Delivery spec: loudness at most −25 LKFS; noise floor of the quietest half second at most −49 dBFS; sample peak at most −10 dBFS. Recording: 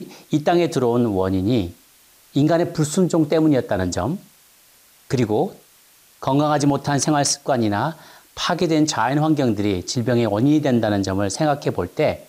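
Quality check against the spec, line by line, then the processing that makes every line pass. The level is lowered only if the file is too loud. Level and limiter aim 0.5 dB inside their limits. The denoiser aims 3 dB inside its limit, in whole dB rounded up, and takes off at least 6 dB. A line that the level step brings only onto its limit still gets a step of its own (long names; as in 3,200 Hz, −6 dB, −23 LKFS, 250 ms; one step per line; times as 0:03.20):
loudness −20.0 LKFS: out of spec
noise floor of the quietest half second −53 dBFS: in spec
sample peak −7.5 dBFS: out of spec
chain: level −5.5 dB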